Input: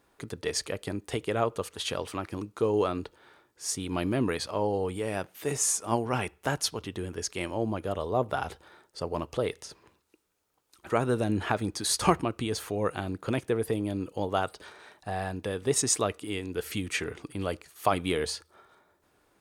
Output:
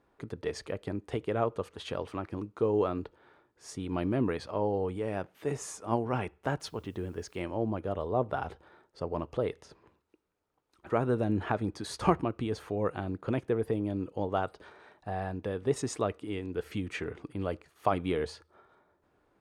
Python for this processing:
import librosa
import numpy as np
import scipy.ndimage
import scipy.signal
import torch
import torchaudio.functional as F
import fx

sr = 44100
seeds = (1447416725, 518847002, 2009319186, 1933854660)

y = fx.lowpass(x, sr, hz=1300.0, slope=6)
y = fx.quant_dither(y, sr, seeds[0], bits=12, dither='triangular', at=(6.6, 7.41))
y = y * 10.0 ** (-1.0 / 20.0)